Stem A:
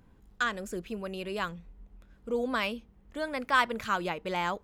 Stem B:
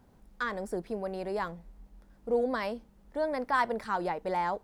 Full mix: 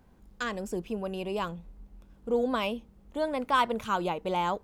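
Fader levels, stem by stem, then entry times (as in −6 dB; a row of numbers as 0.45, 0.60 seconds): −1.5, −3.0 decibels; 0.00, 0.00 seconds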